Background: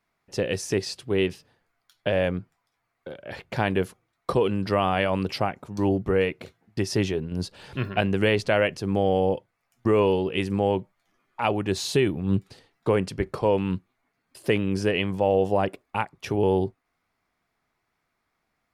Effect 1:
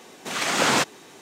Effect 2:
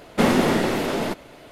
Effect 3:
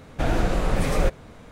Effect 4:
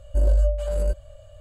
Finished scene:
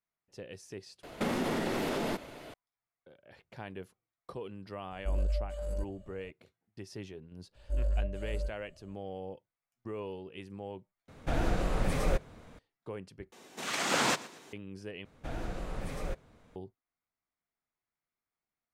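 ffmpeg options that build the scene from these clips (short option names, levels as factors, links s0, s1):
-filter_complex "[4:a]asplit=2[s0][s1];[3:a]asplit=2[s2][s3];[0:a]volume=0.106[s4];[2:a]acompressor=threshold=0.0501:ratio=6:attack=3.2:release=140:knee=1:detection=peak[s5];[s1]flanger=delay=16.5:depth=6.1:speed=1.6[s6];[1:a]aecho=1:1:118|236|354:0.112|0.0404|0.0145[s7];[s4]asplit=5[s8][s9][s10][s11][s12];[s8]atrim=end=1.034[s13];[s5]atrim=end=1.51,asetpts=PTS-STARTPTS,volume=0.75[s14];[s9]atrim=start=2.536:end=11.084[s15];[s2]atrim=end=1.51,asetpts=PTS-STARTPTS,volume=0.422[s16];[s10]atrim=start=12.586:end=13.324[s17];[s7]atrim=end=1.21,asetpts=PTS-STARTPTS,volume=0.398[s18];[s11]atrim=start=14.526:end=15.054[s19];[s3]atrim=end=1.51,asetpts=PTS-STARTPTS,volume=0.168[s20];[s12]atrim=start=16.556[s21];[s0]atrim=end=1.4,asetpts=PTS-STARTPTS,volume=0.251,afade=t=in:d=0.004:c=hsin,afade=t=out:st=1.396:d=0.004:c=hsin,adelay=4910[s22];[s6]atrim=end=1.4,asetpts=PTS-STARTPTS,volume=0.282,afade=t=in:d=0.004:c=hsin,afade=t=out:st=1.396:d=0.004:c=hsin,adelay=7550[s23];[s13][s14]acrossfade=d=0.004:c1=hsin:c2=hsin[s24];[s24][s15]acrossfade=d=0.004:c1=hsin:c2=hsin[s25];[s25][s16]acrossfade=d=0.004:c1=hsin:c2=hsin[s26];[s26][s17]acrossfade=d=0.004:c1=hsin:c2=hsin[s27];[s27][s18]acrossfade=d=0.004:c1=hsin:c2=hsin[s28];[s28][s19]acrossfade=d=0.004:c1=hsin:c2=hsin[s29];[s29][s20]acrossfade=d=0.004:c1=hsin:c2=hsin[s30];[s30][s21]acrossfade=d=0.004:c1=hsin:c2=hsin[s31];[s31][s22][s23]amix=inputs=3:normalize=0"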